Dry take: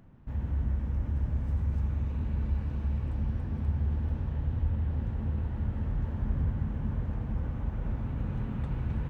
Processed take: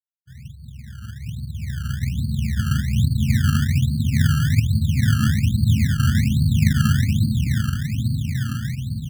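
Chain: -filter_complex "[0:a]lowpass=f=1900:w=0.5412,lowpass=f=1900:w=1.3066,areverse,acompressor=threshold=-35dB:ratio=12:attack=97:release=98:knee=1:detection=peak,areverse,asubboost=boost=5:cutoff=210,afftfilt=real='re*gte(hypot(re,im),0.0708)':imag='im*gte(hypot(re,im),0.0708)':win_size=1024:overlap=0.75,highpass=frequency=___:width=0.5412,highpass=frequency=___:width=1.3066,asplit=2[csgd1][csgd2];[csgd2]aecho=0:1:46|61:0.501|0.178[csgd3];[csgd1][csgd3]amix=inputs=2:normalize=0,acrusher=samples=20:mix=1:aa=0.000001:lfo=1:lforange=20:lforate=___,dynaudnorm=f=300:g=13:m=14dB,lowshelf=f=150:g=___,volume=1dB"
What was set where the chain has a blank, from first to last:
100, 100, 1.2, -5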